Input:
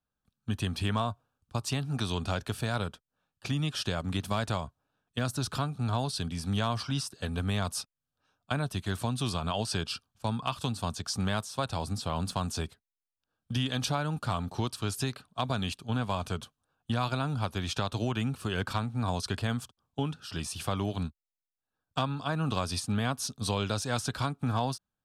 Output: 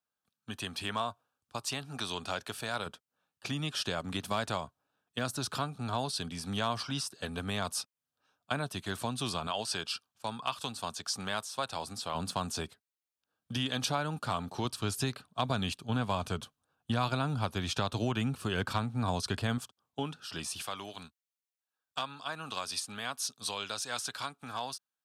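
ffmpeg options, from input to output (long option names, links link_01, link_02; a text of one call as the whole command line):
ffmpeg -i in.wav -af "asetnsamples=nb_out_samples=441:pad=0,asendcmd='2.86 highpass f 280;9.47 highpass f 630;12.15 highpass f 230;14.65 highpass f 85;19.58 highpass f 340;20.62 highpass f 1400',highpass=frequency=600:poles=1" out.wav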